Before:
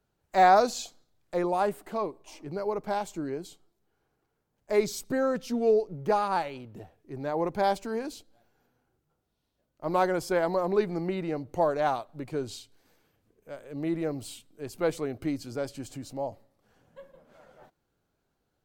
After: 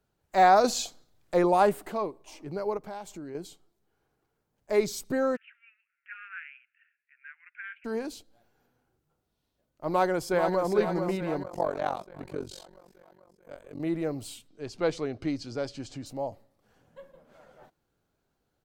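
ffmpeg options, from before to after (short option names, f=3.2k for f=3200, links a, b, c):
-filter_complex "[0:a]asettb=1/sr,asplit=3[a][b][c];[a]atrim=end=0.644[d];[b]atrim=start=0.64:end=1.92,asetpts=PTS-STARTPTS,afade=t=in:d=0.004:c=qsin,afade=t=out:st=1.276:d=0.004:c=qsin,acontrast=25[e];[c]atrim=start=1.916[f];[d][e]acrossfade=d=0.004:c1=hsin:c2=qsin[g];[g][f]acrossfade=d=0.004:c1=qsin:c2=hsin,asettb=1/sr,asplit=3[h][i][j];[h]atrim=end=2.774[k];[i]atrim=start=2.77:end=3.35,asetpts=PTS-STARTPTS,afade=t=in:d=0.004:c=qsin,afade=t=out:st=0.576:d=0.004:c=qsin,acompressor=threshold=-40dB:ratio=2.5:attack=3.2:release=140:knee=1:detection=peak[l];[j]atrim=start=3.346[m];[k][l]acrossfade=d=0.004:c1=hsin:c2=qsin[n];[n][m]acrossfade=d=0.004:c1=qsin:c2=hsin,asplit=3[o][p][q];[o]afade=t=out:st=5.35:d=0.02[r];[p]asuperpass=centerf=2000:order=12:qfactor=1.5,afade=t=in:st=5.35:d=0.02,afade=t=out:st=7.84:d=0.02[s];[q]afade=t=in:st=7.84:d=0.02[t];[r][s][t]amix=inputs=3:normalize=0,asplit=2[u][v];[v]afade=t=in:st=9.89:d=0.01,afade=t=out:st=10.71:d=0.01,aecho=0:1:440|880|1320|1760|2200|2640|3080|3520:0.446684|0.26801|0.160806|0.0964837|0.0578902|0.0347341|0.0208405|0.0125043[w];[u][w]amix=inputs=2:normalize=0,asettb=1/sr,asplit=3[x][y][z];[x]atrim=end=11.434[aa];[y]atrim=start=11.43:end=13.8,asetpts=PTS-STARTPTS,afade=t=in:d=0.004:c=qsin,afade=t=out:st=2.366:d=0.004:c=qsin,tremolo=f=46:d=0.974[ab];[z]atrim=start=13.796[ac];[aa][ab]acrossfade=d=0.004:c1=hsin:c2=qsin[ad];[ad][ac]acrossfade=d=0.004:c1=qsin:c2=hsin,asettb=1/sr,asplit=3[ae][af][ag];[ae]atrim=end=14.484[ah];[af]atrim=start=14.48:end=16.06,asetpts=PTS-STARTPTS,afade=t=in:d=0.004:c=qsin,afade=t=out:st=1.576:d=0.004:c=qsin,lowpass=f=5.2k:t=q:w=1.5[ai];[ag]atrim=start=16.056[aj];[ah][ai]acrossfade=d=0.004:c1=hsin:c2=qsin[ak];[ak][aj]acrossfade=d=0.004:c1=qsin:c2=hsin"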